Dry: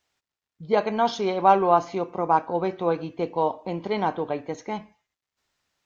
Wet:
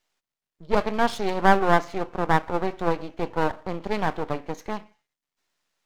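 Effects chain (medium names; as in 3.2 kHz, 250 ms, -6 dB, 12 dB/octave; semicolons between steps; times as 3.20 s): high-pass 180 Hz 12 dB/octave; half-wave rectifier; trim +3 dB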